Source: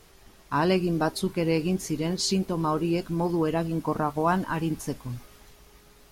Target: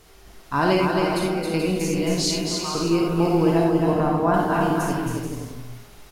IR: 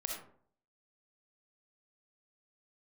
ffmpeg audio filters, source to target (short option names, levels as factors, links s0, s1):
-filter_complex "[0:a]asettb=1/sr,asplit=3[s0][s1][s2];[s0]atrim=end=0.864[s3];[s1]atrim=start=0.86:end=1.54,asetpts=PTS-STARTPTS,afade=t=in:d=0.004:c=qsin,afade=t=out:st=0.676:d=0.004:c=qsin,acompressor=threshold=0.0398:ratio=6[s4];[s2]atrim=start=1.536[s5];[s3][s4]acrossfade=d=0.004:c1=hsin:c2=qsin[s6];[s6][s5]acrossfade=d=0.004:c1=qsin:c2=hsin,asettb=1/sr,asplit=3[s7][s8][s9];[s7]atrim=end=2.254[s10];[s8]atrim=start=2.25:end=2.75,asetpts=PTS-STARTPTS,afade=t=in:d=0.004:c=qsin,afade=t=out:st=0.496:d=0.004:c=qsin,highpass=1400[s11];[s9]atrim=start=2.746[s12];[s10][s11]acrossfade=d=0.004:c1=hsin:c2=qsin[s13];[s13][s12]acrossfade=d=0.004:c1=qsin:c2=hsin,asettb=1/sr,asplit=3[s14][s15][s16];[s14]atrim=end=3.644[s17];[s15]atrim=start=3.64:end=4.34,asetpts=PTS-STARTPTS,afade=t=in:d=0.004:c=qsin,afade=t=out:st=0.696:d=0.004:c=qsin,highshelf=f=2100:g=-11.5[s18];[s16]atrim=start=4.336[s19];[s17][s18]acrossfade=d=0.004:c1=hsin:c2=qsin[s20];[s20][s19]acrossfade=d=0.004:c1=qsin:c2=hsin,aecho=1:1:270|432|529.2|587.5|622.5:0.631|0.398|0.251|0.158|0.1[s21];[1:a]atrim=start_sample=2205,asetrate=48510,aresample=44100[s22];[s21][s22]afir=irnorm=-1:irlink=0,volume=1.68"